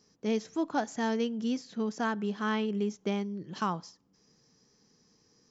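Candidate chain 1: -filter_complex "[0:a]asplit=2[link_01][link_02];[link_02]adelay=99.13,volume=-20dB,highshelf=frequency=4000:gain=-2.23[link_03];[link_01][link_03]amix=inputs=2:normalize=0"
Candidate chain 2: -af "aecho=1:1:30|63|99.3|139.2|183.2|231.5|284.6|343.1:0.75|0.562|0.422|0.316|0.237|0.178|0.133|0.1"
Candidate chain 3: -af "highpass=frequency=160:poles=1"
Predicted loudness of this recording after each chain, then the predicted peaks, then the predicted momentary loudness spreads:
−32.5, −28.5, −33.5 LKFS; −16.5, −13.5, −16.0 dBFS; 4, 4, 5 LU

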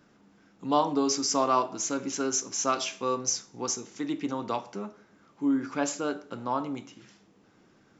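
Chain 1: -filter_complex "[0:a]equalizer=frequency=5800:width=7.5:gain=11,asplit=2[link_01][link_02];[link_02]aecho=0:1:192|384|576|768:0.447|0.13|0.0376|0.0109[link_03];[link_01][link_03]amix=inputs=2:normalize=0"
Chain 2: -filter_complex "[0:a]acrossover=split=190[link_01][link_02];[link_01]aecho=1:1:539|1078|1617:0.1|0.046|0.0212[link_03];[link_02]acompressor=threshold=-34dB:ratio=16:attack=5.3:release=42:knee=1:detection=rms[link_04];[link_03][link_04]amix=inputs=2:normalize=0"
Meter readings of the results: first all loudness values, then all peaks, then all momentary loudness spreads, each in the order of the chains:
−25.5, −37.0 LKFS; −8.0, −24.5 dBFS; 14, 6 LU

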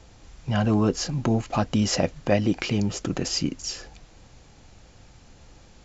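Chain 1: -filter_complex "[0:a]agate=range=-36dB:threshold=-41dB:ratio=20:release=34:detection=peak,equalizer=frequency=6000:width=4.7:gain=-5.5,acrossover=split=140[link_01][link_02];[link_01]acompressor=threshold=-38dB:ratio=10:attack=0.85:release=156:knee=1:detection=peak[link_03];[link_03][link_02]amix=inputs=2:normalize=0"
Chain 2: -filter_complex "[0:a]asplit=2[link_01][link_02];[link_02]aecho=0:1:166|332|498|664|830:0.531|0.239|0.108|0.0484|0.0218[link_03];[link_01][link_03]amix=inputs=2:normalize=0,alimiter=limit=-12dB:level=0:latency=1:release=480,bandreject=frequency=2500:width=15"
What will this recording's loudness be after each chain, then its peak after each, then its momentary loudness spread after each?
−26.5, −25.5 LKFS; −8.0, −12.0 dBFS; 9, 11 LU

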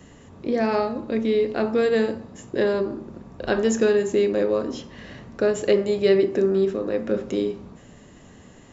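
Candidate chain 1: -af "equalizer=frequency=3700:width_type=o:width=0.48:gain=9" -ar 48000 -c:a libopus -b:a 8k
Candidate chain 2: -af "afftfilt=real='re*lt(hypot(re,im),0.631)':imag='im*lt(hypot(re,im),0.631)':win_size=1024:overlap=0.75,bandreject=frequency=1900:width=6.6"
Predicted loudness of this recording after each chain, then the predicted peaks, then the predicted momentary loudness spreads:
−23.0, −29.0 LKFS; −8.0, −10.0 dBFS; 17, 17 LU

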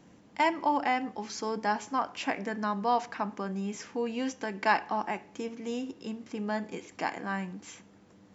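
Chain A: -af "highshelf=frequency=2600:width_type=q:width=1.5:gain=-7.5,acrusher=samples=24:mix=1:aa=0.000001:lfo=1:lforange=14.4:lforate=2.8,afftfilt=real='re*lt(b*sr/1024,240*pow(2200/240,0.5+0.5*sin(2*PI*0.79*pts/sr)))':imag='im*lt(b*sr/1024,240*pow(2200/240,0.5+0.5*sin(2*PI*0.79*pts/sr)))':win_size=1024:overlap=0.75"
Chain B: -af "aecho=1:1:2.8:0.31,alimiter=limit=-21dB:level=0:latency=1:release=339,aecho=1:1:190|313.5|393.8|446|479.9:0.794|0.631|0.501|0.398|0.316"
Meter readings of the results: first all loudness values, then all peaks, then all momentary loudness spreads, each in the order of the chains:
−35.0, −31.5 LKFS; −13.0, −15.5 dBFS; 13, 5 LU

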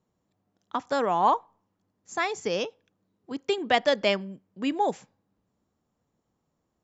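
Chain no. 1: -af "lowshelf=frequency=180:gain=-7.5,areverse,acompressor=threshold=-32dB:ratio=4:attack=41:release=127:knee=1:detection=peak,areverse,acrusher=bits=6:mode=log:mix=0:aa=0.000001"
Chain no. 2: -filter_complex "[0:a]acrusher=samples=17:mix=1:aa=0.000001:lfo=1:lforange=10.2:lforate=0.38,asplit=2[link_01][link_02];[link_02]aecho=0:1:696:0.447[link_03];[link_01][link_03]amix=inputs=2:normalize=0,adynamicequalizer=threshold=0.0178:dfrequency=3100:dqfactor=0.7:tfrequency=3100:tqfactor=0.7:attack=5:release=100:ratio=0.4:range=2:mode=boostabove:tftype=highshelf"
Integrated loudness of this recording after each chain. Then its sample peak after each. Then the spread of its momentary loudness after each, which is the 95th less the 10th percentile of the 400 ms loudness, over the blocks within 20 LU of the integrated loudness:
−33.5, −26.5 LKFS; −16.0, −3.0 dBFS; 10, 14 LU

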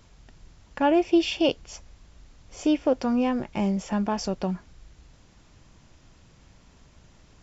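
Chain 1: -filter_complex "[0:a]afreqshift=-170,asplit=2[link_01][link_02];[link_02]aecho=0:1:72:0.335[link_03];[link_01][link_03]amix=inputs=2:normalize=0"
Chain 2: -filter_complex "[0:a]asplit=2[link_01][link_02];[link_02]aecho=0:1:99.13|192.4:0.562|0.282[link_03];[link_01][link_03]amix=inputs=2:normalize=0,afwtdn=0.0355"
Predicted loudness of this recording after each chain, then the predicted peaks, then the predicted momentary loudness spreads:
−25.5, −24.5 LKFS; −9.5, −9.5 dBFS; 18, 10 LU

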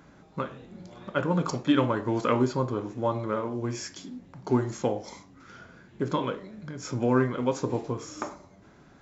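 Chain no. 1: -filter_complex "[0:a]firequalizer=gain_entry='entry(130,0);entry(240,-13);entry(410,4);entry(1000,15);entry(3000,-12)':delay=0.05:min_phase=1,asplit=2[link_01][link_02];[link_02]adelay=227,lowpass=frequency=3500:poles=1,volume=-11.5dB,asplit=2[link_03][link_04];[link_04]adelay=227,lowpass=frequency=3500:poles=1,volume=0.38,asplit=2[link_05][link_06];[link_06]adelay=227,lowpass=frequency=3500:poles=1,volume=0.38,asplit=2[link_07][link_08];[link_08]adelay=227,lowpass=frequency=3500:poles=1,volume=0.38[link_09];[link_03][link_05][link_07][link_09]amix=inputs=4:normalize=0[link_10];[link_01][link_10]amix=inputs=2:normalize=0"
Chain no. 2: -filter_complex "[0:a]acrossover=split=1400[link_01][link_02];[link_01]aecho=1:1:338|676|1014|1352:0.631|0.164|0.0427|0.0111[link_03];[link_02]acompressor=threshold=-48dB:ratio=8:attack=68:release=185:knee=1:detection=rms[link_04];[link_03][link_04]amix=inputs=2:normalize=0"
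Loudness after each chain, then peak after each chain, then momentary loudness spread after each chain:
−22.5, −28.0 LKFS; −3.0, −11.0 dBFS; 18, 16 LU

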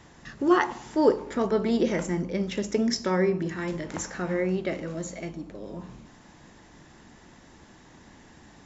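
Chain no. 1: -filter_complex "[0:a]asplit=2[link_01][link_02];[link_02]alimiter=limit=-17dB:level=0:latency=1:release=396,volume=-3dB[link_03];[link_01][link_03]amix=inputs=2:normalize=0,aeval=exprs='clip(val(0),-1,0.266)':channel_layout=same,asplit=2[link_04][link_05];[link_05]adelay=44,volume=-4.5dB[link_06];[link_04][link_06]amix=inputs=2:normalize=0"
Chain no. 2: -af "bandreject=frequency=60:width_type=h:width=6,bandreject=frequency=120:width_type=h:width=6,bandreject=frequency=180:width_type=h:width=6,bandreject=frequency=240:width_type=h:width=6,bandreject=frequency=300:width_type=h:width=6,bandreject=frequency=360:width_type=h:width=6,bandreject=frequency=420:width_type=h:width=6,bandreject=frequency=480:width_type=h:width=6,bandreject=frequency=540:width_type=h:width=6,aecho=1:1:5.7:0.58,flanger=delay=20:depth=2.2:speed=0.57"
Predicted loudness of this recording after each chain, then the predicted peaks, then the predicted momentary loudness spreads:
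−22.0, −28.5 LKFS; −4.5, −8.0 dBFS; 14, 17 LU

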